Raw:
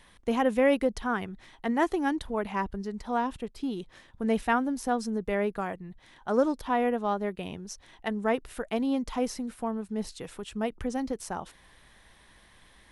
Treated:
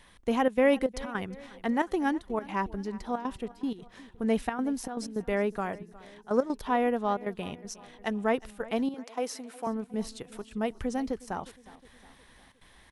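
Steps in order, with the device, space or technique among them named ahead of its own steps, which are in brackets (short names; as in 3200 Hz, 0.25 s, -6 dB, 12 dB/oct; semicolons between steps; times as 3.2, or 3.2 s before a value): trance gate with a delay (step gate "xxxxx.xxx.x.xx" 157 bpm -12 dB; feedback echo 0.361 s, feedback 52%, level -20 dB); 8.94–9.67 HPF 400 Hz 12 dB/oct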